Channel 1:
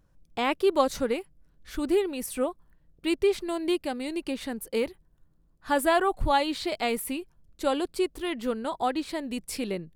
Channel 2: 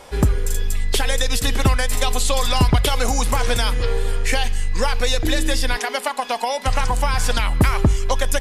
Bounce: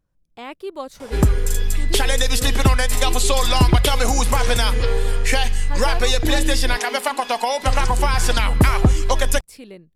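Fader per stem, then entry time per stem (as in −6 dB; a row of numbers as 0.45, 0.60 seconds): −8.0, +1.5 decibels; 0.00, 1.00 seconds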